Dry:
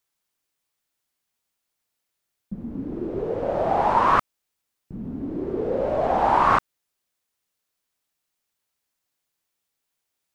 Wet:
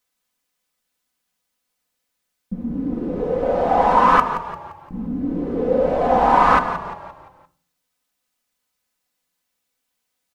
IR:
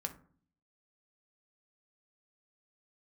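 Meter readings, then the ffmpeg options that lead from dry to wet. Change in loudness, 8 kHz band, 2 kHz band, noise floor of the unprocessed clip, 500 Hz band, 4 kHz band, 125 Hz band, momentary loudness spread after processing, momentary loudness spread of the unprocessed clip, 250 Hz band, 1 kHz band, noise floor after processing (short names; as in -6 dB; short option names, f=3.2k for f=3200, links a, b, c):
+4.0 dB, n/a, +5.5 dB, -81 dBFS, +5.0 dB, +4.0 dB, +3.5 dB, 19 LU, 16 LU, +6.5 dB, +5.0 dB, -77 dBFS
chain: -filter_complex "[0:a]highshelf=f=4.7k:g=-8.5,aecho=1:1:4:0.65,asplit=6[a][b][c][d][e][f];[b]adelay=173,afreqshift=-38,volume=-11dB[g];[c]adelay=346,afreqshift=-76,volume=-17.7dB[h];[d]adelay=519,afreqshift=-114,volume=-24.5dB[i];[e]adelay=692,afreqshift=-152,volume=-31.2dB[j];[f]adelay=865,afreqshift=-190,volume=-38dB[k];[a][g][h][i][j][k]amix=inputs=6:normalize=0,asplit=2[l][m];[1:a]atrim=start_sample=2205,highshelf=f=3.4k:g=11.5[n];[m][n]afir=irnorm=-1:irlink=0,volume=0dB[o];[l][o]amix=inputs=2:normalize=0,volume=-2.5dB"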